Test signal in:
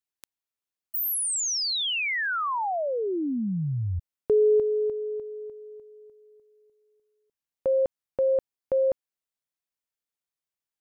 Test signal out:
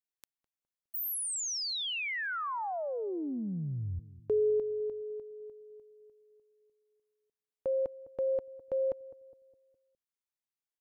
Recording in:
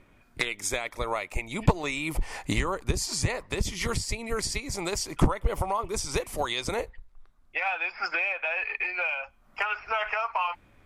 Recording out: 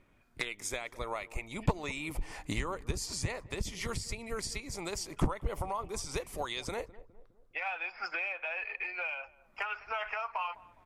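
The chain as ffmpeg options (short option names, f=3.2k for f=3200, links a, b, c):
-filter_complex "[0:a]asplit=2[a][b];[b]adelay=206,lowpass=f=820:p=1,volume=-17dB,asplit=2[c][d];[d]adelay=206,lowpass=f=820:p=1,volume=0.53,asplit=2[e][f];[f]adelay=206,lowpass=f=820:p=1,volume=0.53,asplit=2[g][h];[h]adelay=206,lowpass=f=820:p=1,volume=0.53,asplit=2[i][j];[j]adelay=206,lowpass=f=820:p=1,volume=0.53[k];[a][c][e][g][i][k]amix=inputs=6:normalize=0,volume=-7.5dB"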